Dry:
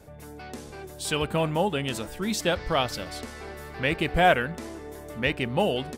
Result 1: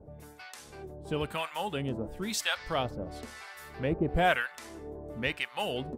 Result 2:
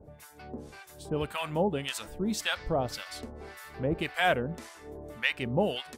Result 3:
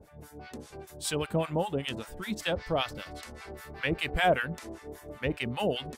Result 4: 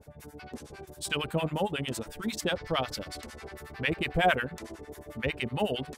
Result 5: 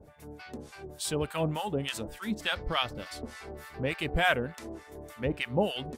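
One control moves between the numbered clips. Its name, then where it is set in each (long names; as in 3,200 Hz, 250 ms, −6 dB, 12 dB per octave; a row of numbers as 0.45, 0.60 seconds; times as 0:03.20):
two-band tremolo in antiphase, speed: 1, 1.8, 5.1, 11, 3.4 Hertz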